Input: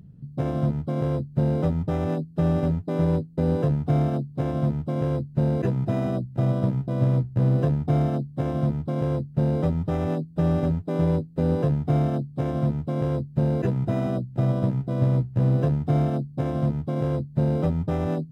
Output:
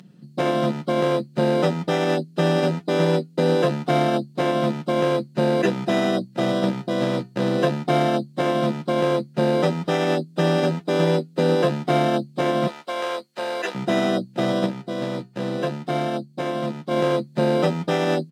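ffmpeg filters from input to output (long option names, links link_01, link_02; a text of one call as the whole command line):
ffmpeg -i in.wav -filter_complex "[0:a]asettb=1/sr,asplit=3[link_01][link_02][link_03];[link_01]atrim=end=12.674[link_04];[link_02]atrim=start=12.67:end=13.75,asetpts=PTS-STARTPTS,afade=type=in:duration=0.004:curve=qsin,afade=type=out:start_time=1.076:duration=0.004:curve=qsin,highpass=720[link_05];[link_03]atrim=start=13.746[link_06];[link_04][link_05]acrossfade=duration=0.004:curve1=hsin:curve2=qsin[link_07];[link_07][link_06]acrossfade=duration=0.004:curve1=qsin:curve2=hsin,asplit=3[link_08][link_09][link_10];[link_08]atrim=end=14.662[link_11];[link_09]atrim=start=14.658:end=16.912,asetpts=PTS-STARTPTS,volume=-4.5dB[link_12];[link_10]atrim=start=16.908[link_13];[link_11][link_12]acrossfade=duration=0.004:curve1=hsin:curve2=hsin[link_14];[link_14][link_13]acrossfade=duration=0.004:curve1=hsin:curve2=hsin,highpass=frequency=210:width=0.5412,highpass=frequency=210:width=1.3066,equalizer=frequency=4100:width=0.33:gain=13,aecho=1:1:5.6:0.44,volume=5dB" out.wav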